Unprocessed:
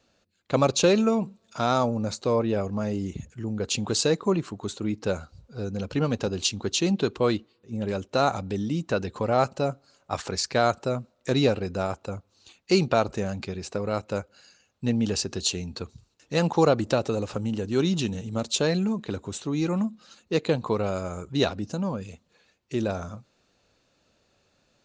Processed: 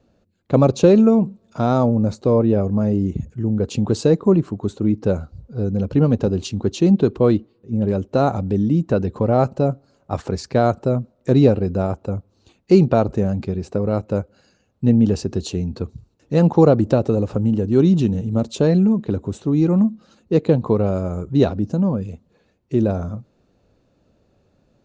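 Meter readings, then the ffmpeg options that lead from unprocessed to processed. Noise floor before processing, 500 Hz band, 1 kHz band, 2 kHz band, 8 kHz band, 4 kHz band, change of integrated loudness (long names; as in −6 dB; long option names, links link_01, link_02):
−69 dBFS, +7.0 dB, +2.5 dB, −3.0 dB, can't be measured, −6.5 dB, +8.0 dB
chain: -af "tiltshelf=frequency=910:gain=9.5,volume=2dB"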